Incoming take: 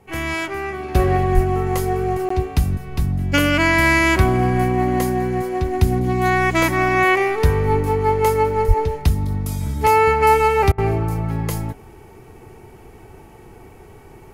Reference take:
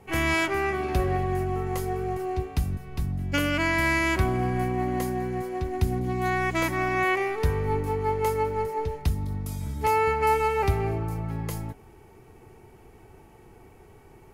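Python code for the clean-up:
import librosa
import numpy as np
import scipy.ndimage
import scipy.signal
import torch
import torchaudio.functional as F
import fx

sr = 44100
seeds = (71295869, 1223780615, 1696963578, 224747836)

y = fx.highpass(x, sr, hz=140.0, slope=24, at=(1.34, 1.46), fade=0.02)
y = fx.highpass(y, sr, hz=140.0, slope=24, at=(8.67, 8.79), fade=0.02)
y = fx.fix_interpolate(y, sr, at_s=(2.29,), length_ms=14.0)
y = fx.fix_interpolate(y, sr, at_s=(10.72,), length_ms=60.0)
y = fx.gain(y, sr, db=fx.steps((0.0, 0.0), (0.95, -8.5)))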